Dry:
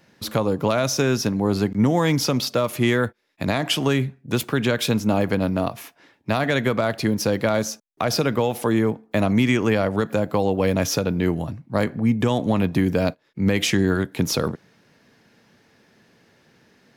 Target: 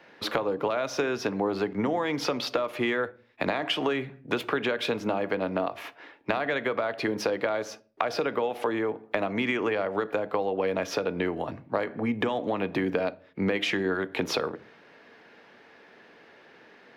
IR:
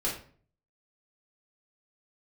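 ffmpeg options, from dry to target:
-filter_complex "[0:a]acrossover=split=330 3600:gain=0.126 1 0.1[a][b][c];[a][b][c]amix=inputs=3:normalize=0,acompressor=threshold=-31dB:ratio=12,asplit=2[d][e];[1:a]atrim=start_sample=2205,lowshelf=f=470:g=9[f];[e][f]afir=irnorm=-1:irlink=0,volume=-24dB[g];[d][g]amix=inputs=2:normalize=0,volume=6.5dB"

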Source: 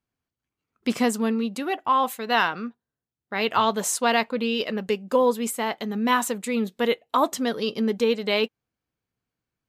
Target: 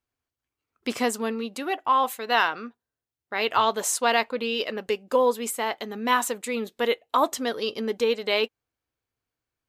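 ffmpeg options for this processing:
-af "equalizer=f=180:w=1.8:g=-12.5"

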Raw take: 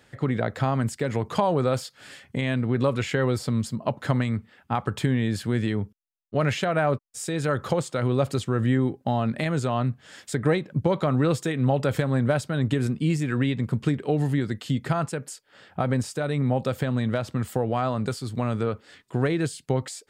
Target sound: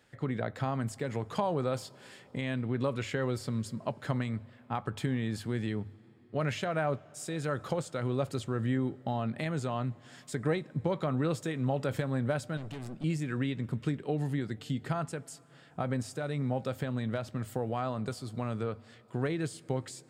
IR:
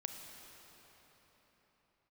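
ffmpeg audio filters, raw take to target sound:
-filter_complex "[0:a]bandreject=f=50:t=h:w=6,bandreject=f=100:t=h:w=6,asettb=1/sr,asplit=3[a][b][c];[a]atrim=end=12.574[d];[b]atrim=start=12.57:end=13.04,asetpts=PTS-STARTPTS,afade=t=in:d=0.004:c=qsin,afade=t=out:st=0.466:d=0.004:c=qsin,aeval=exprs='(tanh(31.6*val(0)+0.55)-tanh(0.55))/31.6':c=same[e];[c]atrim=start=13.036[f];[d][e]acrossfade=d=0.004:c1=hsin:c2=qsin[g];[g][f]acrossfade=d=0.004:c1=qsin:c2=hsin,asplit=2[h][i];[1:a]atrim=start_sample=2205,adelay=19[j];[i][j]afir=irnorm=-1:irlink=0,volume=-16.5dB[k];[h][k]amix=inputs=2:normalize=0,volume=-8dB"

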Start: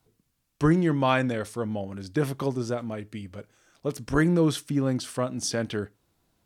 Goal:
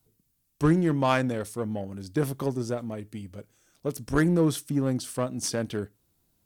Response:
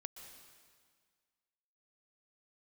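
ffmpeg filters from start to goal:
-filter_complex "[0:a]aemphasis=mode=production:type=50kf,asplit=2[a][b];[b]adynamicsmooth=sensitivity=1.5:basefreq=550,volume=1dB[c];[a][c]amix=inputs=2:normalize=0,volume=-7dB"

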